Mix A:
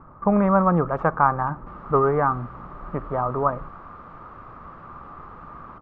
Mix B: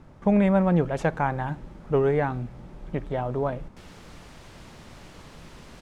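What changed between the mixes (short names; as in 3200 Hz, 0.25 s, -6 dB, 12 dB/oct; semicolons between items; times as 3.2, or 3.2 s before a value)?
background: entry +2.10 s; master: remove synth low-pass 1200 Hz, resonance Q 9.5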